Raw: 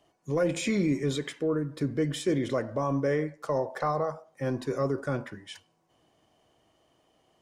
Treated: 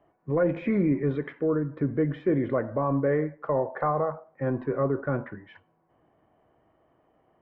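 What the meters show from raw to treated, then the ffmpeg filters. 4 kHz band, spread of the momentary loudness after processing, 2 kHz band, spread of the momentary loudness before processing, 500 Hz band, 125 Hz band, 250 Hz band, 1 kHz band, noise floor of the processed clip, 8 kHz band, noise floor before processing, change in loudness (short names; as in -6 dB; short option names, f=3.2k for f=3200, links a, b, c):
under -15 dB, 6 LU, -0.5 dB, 7 LU, +2.5 dB, +2.5 dB, +2.5 dB, +2.5 dB, -68 dBFS, under -35 dB, -69 dBFS, +2.5 dB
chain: -af "lowpass=f=1.9k:w=0.5412,lowpass=f=1.9k:w=1.3066,volume=2.5dB"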